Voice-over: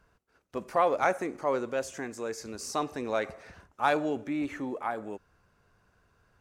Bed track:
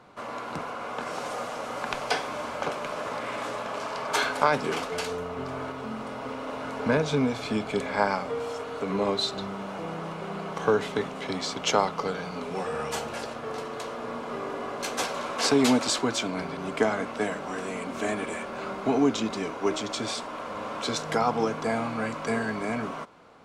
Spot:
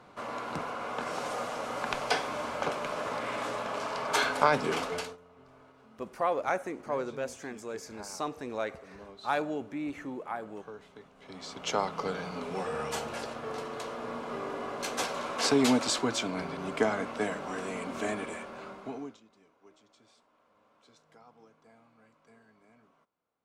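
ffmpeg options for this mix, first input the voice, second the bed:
ffmpeg -i stem1.wav -i stem2.wav -filter_complex "[0:a]adelay=5450,volume=-4dB[link_01];[1:a]volume=18.5dB,afade=type=out:start_time=4.91:duration=0.26:silence=0.0841395,afade=type=in:start_time=11.17:duration=0.96:silence=0.1,afade=type=out:start_time=17.96:duration=1.24:silence=0.0334965[link_02];[link_01][link_02]amix=inputs=2:normalize=0" out.wav

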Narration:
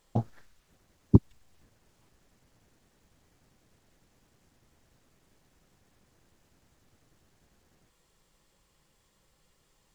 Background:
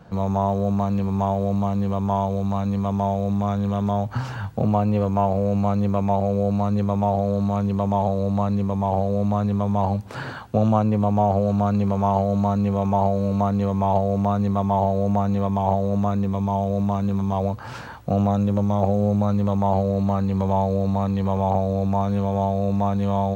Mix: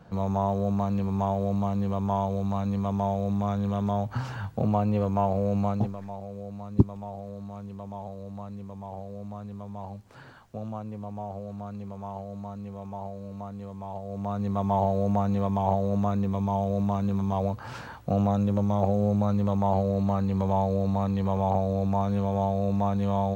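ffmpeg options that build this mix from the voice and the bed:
ffmpeg -i stem1.wav -i stem2.wav -filter_complex "[0:a]adelay=5650,volume=-1dB[link_01];[1:a]volume=8.5dB,afade=type=out:start_time=5.63:duration=0.34:silence=0.237137,afade=type=in:start_time=14.02:duration=0.71:silence=0.223872[link_02];[link_01][link_02]amix=inputs=2:normalize=0" out.wav

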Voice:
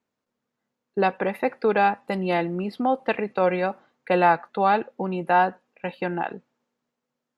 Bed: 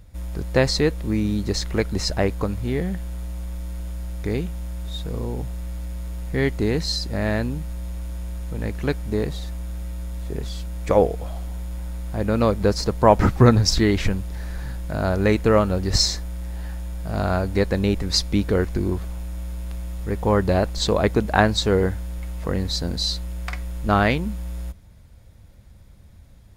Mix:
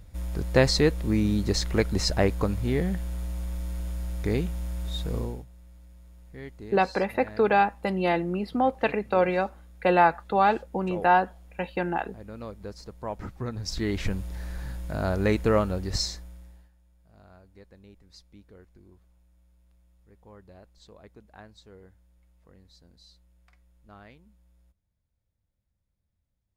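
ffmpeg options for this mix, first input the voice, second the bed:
ffmpeg -i stem1.wav -i stem2.wav -filter_complex "[0:a]adelay=5750,volume=-1dB[link_01];[1:a]volume=13.5dB,afade=type=out:start_time=5.17:duration=0.28:silence=0.11885,afade=type=in:start_time=13.53:duration=0.69:silence=0.177828,afade=type=out:start_time=15.49:duration=1.21:silence=0.0473151[link_02];[link_01][link_02]amix=inputs=2:normalize=0" out.wav

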